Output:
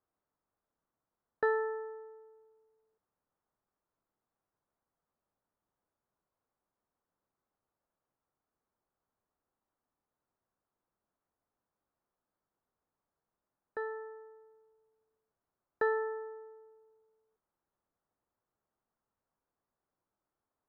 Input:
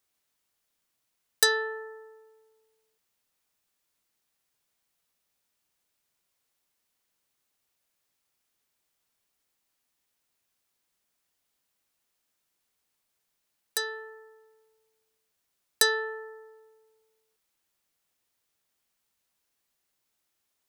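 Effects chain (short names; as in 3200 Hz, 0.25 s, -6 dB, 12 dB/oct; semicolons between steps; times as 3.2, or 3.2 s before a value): LPF 1300 Hz 24 dB/oct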